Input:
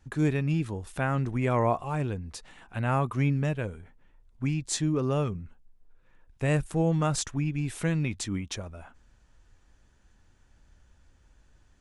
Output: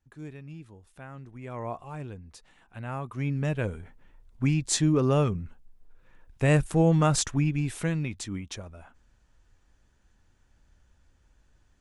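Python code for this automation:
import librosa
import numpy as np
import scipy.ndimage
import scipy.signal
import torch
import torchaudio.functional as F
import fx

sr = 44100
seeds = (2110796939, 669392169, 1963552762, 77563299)

y = fx.gain(x, sr, db=fx.line((1.32, -16.0), (1.75, -8.5), (3.04, -8.5), (3.68, 4.0), (7.42, 4.0), (8.11, -3.0)))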